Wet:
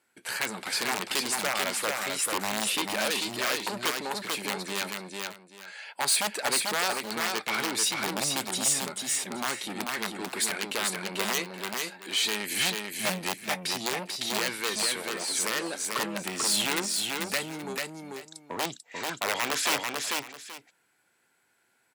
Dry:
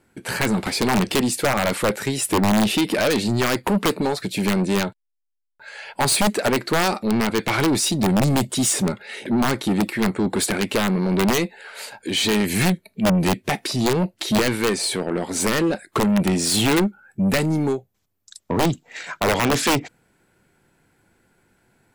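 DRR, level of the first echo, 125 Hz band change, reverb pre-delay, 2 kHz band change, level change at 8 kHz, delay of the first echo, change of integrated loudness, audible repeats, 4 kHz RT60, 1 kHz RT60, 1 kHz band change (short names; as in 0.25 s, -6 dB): none, -3.5 dB, -21.0 dB, none, -4.0 dB, -2.5 dB, 0.441 s, -7.5 dB, 2, none, none, -7.5 dB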